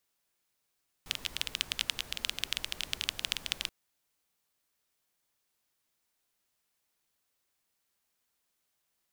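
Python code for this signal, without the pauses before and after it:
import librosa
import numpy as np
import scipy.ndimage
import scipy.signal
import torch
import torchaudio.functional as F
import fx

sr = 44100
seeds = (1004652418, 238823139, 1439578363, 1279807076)

y = fx.rain(sr, seeds[0], length_s=2.63, drops_per_s=15.0, hz=3100.0, bed_db=-12.5)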